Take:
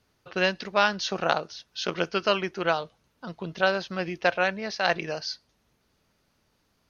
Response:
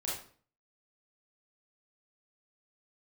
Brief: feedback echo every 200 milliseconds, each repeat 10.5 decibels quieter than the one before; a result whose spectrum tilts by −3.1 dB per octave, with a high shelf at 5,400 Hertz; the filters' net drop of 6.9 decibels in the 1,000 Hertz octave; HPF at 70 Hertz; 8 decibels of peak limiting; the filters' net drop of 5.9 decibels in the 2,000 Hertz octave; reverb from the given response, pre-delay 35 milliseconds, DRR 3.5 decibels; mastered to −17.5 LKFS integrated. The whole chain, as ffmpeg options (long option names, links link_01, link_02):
-filter_complex "[0:a]highpass=70,equalizer=frequency=1000:width_type=o:gain=-9,equalizer=frequency=2000:width_type=o:gain=-3.5,highshelf=frequency=5400:gain=-7,alimiter=limit=-18.5dB:level=0:latency=1,aecho=1:1:200|400|600:0.299|0.0896|0.0269,asplit=2[link_01][link_02];[1:a]atrim=start_sample=2205,adelay=35[link_03];[link_02][link_03]afir=irnorm=-1:irlink=0,volume=-6dB[link_04];[link_01][link_04]amix=inputs=2:normalize=0,volume=13.5dB"